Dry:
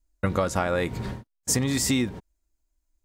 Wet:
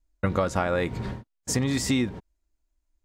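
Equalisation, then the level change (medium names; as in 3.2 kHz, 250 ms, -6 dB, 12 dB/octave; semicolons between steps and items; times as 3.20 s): treble shelf 7.9 kHz -11.5 dB; 0.0 dB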